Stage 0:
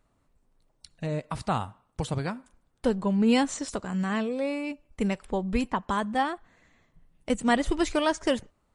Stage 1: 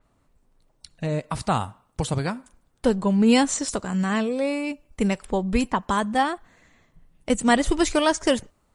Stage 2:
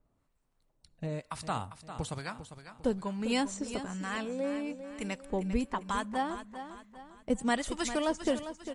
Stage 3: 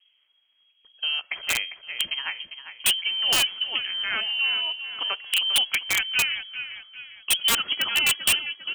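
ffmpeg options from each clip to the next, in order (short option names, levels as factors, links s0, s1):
-af "adynamicequalizer=threshold=0.00447:dfrequency=4900:dqfactor=0.7:tfrequency=4900:tqfactor=0.7:attack=5:release=100:ratio=0.375:range=3:mode=boostabove:tftype=highshelf,volume=1.68"
-filter_complex "[0:a]acrossover=split=810[s0][s1];[s0]aeval=exprs='val(0)*(1-0.7/2+0.7/2*cos(2*PI*1.1*n/s))':c=same[s2];[s1]aeval=exprs='val(0)*(1-0.7/2-0.7/2*cos(2*PI*1.1*n/s))':c=same[s3];[s2][s3]amix=inputs=2:normalize=0,asplit=2[s4][s5];[s5]aecho=0:1:400|800|1200|1600:0.282|0.118|0.0497|0.0209[s6];[s4][s6]amix=inputs=2:normalize=0,volume=0.447"
-af "lowpass=f=2800:t=q:w=0.5098,lowpass=f=2800:t=q:w=0.6013,lowpass=f=2800:t=q:w=0.9,lowpass=f=2800:t=q:w=2.563,afreqshift=-3300,aeval=exprs='(mod(11.9*val(0)+1,2)-1)/11.9':c=same,volume=2.66"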